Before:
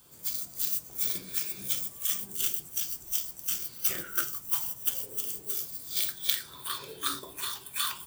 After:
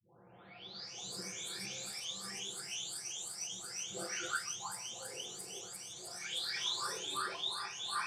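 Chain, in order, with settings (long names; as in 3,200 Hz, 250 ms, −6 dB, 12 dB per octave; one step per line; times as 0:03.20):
every frequency bin delayed by itself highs late, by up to 870 ms
loudspeaker in its box 140–7,100 Hz, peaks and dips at 150 Hz −4 dB, 300 Hz −8 dB, 440 Hz +5 dB, 760 Hz +9 dB
level +1 dB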